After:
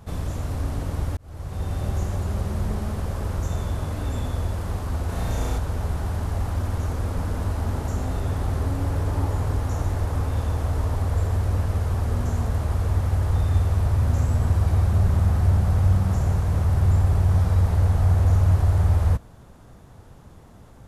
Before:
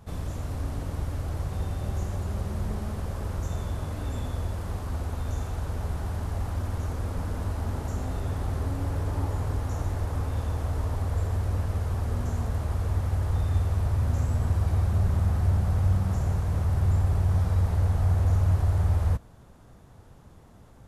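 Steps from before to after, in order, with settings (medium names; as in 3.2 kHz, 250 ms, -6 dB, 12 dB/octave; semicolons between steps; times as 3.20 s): 1.17–1.77 s: fade in; 5.05–5.58 s: flutter echo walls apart 5.9 m, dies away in 1.1 s; trim +4.5 dB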